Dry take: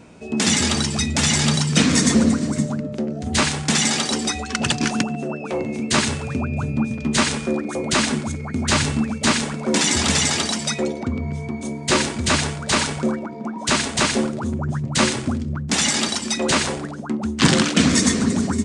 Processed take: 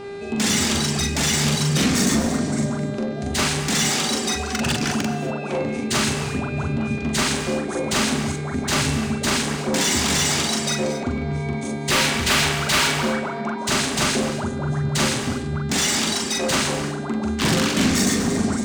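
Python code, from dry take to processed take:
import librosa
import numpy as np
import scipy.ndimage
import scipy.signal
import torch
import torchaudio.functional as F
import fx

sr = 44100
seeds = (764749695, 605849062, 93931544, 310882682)

y = fx.peak_eq(x, sr, hz=2300.0, db=9.0, octaves=2.8, at=(11.9, 13.55))
y = 10.0 ** (-17.0 / 20.0) * np.tanh(y / 10.0 ** (-17.0 / 20.0))
y = fx.dmg_buzz(y, sr, base_hz=400.0, harmonics=13, level_db=-36.0, tilt_db=-8, odd_only=False)
y = fx.doubler(y, sr, ms=42.0, db=-2.5)
y = fx.rev_gated(y, sr, seeds[0], gate_ms=270, shape='rising', drr_db=11.0)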